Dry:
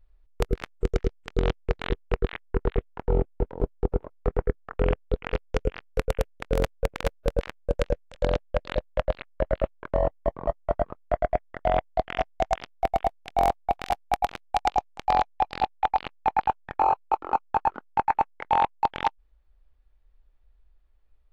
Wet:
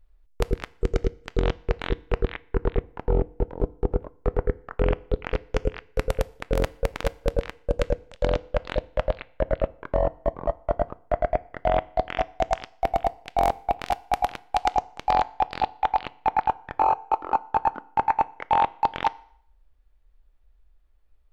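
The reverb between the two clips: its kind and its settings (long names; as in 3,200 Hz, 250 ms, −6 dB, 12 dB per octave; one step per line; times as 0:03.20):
feedback delay network reverb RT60 0.62 s, low-frequency decay 0.85×, high-frequency decay 0.95×, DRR 17.5 dB
level +1 dB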